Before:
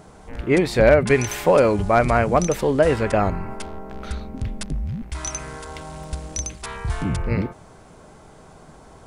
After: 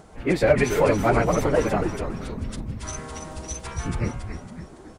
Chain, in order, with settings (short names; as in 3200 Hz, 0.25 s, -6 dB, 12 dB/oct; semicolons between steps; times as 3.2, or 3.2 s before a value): plain phase-vocoder stretch 0.55×; frequency-shifting echo 0.278 s, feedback 45%, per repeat -140 Hz, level -6.5 dB